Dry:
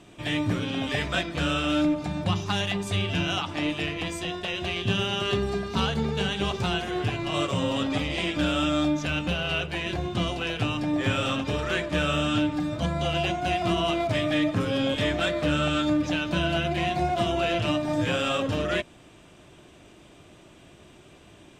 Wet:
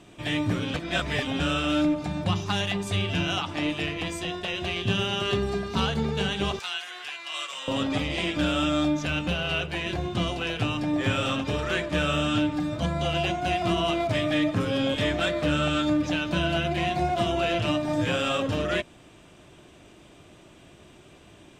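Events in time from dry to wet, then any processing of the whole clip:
0:00.74–0:01.40: reverse
0:06.59–0:07.68: high-pass filter 1,500 Hz

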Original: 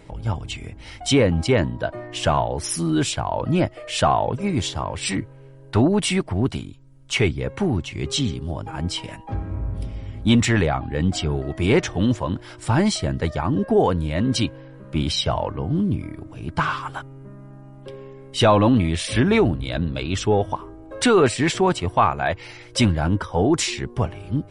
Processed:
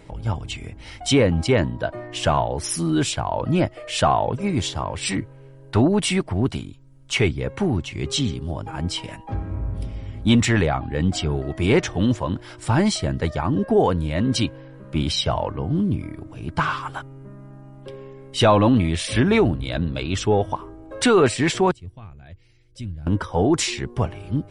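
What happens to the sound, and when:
0:21.71–0:23.07: guitar amp tone stack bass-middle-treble 10-0-1

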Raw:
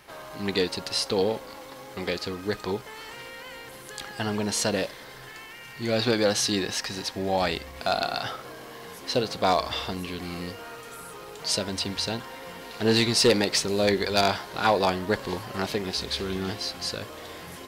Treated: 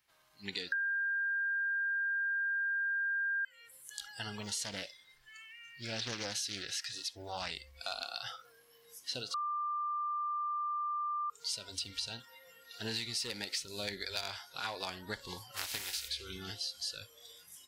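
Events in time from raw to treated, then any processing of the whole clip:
0:00.72–0:03.45: beep over 1,600 Hz −8 dBFS
0:04.41–0:07.51: highs frequency-modulated by the lows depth 0.48 ms
0:09.34–0:11.30: beep over 1,190 Hz −16 dBFS
0:15.56–0:16.07: compressing power law on the bin magnitudes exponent 0.5
whole clip: noise reduction from a noise print of the clip's start 17 dB; guitar amp tone stack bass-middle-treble 5-5-5; downward compressor 5 to 1, threshold −38 dBFS; level +3 dB

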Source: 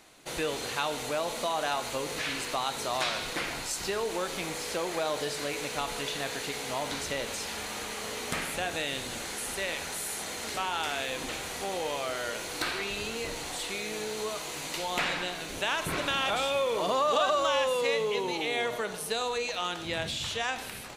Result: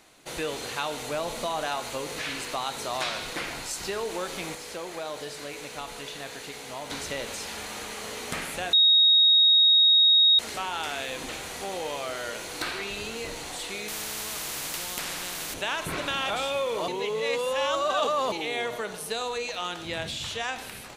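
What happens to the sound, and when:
0:01.11–0:01.65: low-shelf EQ 130 Hz +10.5 dB
0:04.55–0:06.90: clip gain −4.5 dB
0:08.73–0:10.39: beep over 3,760 Hz −15 dBFS
0:13.88–0:15.54: every bin compressed towards the loudest bin 4 to 1
0:16.88–0:18.32: reverse

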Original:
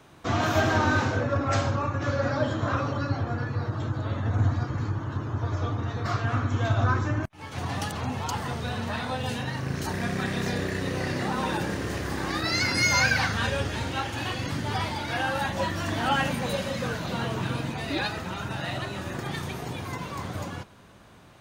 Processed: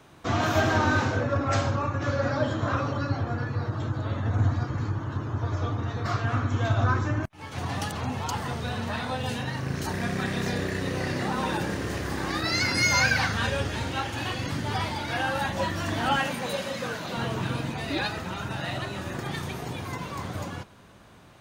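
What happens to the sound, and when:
0:16.18–0:17.17: high-pass filter 270 Hz 6 dB per octave

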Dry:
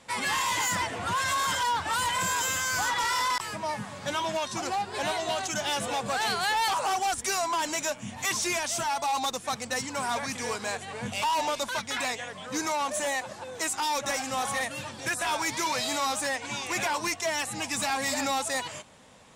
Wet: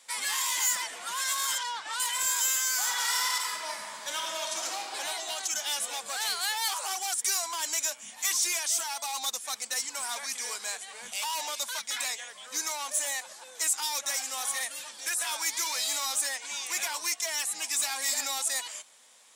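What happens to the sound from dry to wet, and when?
0:01.58–0:02.00: high-frequency loss of the air 77 metres
0:02.74–0:04.90: thrown reverb, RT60 2.6 s, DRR 0.5 dB
whole clip: high-pass filter 250 Hz 12 dB per octave; spectral tilt +4.5 dB per octave; notch filter 2,700 Hz, Q 23; level −8.5 dB

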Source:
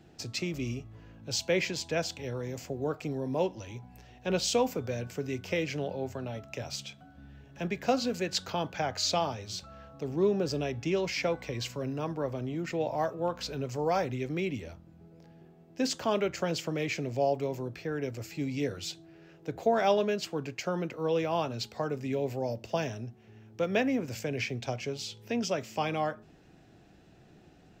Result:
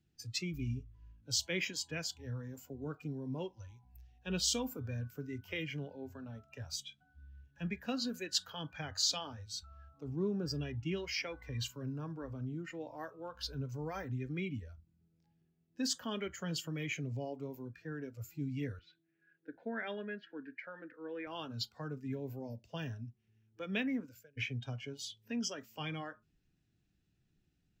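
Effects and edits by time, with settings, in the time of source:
0:18.79–0:21.27: loudspeaker in its box 250–3,200 Hz, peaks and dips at 270 Hz +3 dB, 410 Hz −3 dB, 750 Hz −5 dB, 1,100 Hz −8 dB, 1,700 Hz +6 dB, 2,900 Hz −7 dB
0:23.96–0:24.37: fade out
whole clip: noise reduction from a noise print of the clip's start 17 dB; guitar amp tone stack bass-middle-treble 6-0-2; level +14 dB

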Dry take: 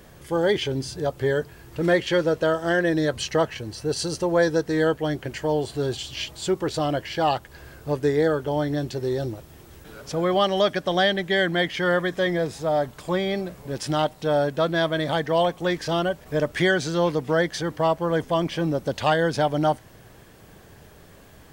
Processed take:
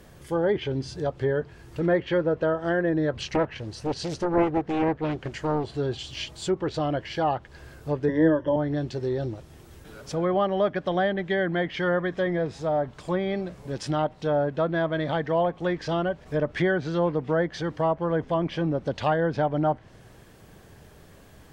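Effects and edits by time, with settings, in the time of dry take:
0:03.17–0:05.64: highs frequency-modulated by the lows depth 0.8 ms
0:08.08–0:08.56: EQ curve with evenly spaced ripples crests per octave 1.2, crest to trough 18 dB
whole clip: low-shelf EQ 310 Hz +2.5 dB; treble cut that deepens with the level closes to 1,600 Hz, closed at −17 dBFS; level −3 dB

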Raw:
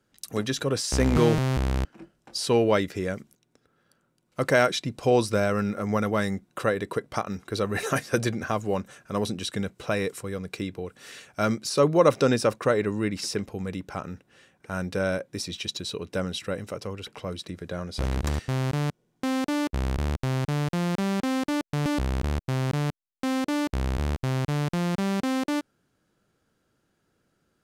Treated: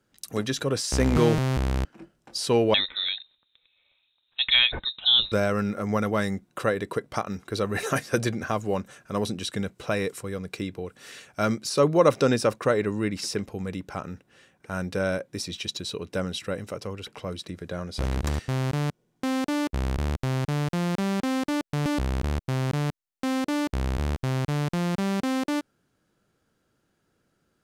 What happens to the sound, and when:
0:02.74–0:05.32: voice inversion scrambler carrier 3,900 Hz

